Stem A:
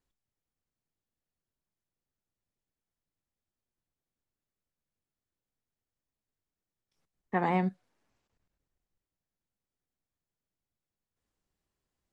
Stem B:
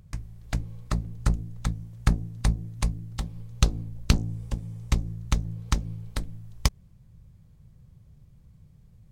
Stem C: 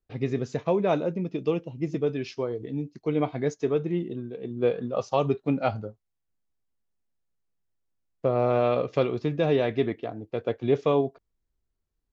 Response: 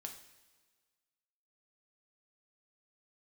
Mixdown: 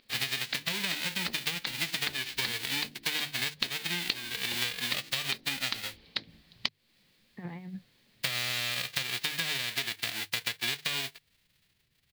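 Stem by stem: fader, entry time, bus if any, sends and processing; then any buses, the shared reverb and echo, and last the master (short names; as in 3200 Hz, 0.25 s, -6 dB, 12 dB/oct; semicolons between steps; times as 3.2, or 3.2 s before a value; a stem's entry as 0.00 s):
-13.5 dB, 0.05 s, no send, low shelf 260 Hz +6 dB; negative-ratio compressor -33 dBFS, ratio -0.5; bell 130 Hz +14.5 dB 1.9 oct
-2.0 dB, 0.00 s, no send, spectral gate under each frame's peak -15 dB weak; resonant high shelf 6400 Hz -12.5 dB, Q 3
0.0 dB, 0.00 s, no send, spectral whitening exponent 0.1; compressor, threshold -26 dBFS, peak gain reduction 10 dB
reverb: off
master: band shelf 2800 Hz +11 dB; notches 50/100/150 Hz; compressor 5:1, threshold -29 dBFS, peak gain reduction 16 dB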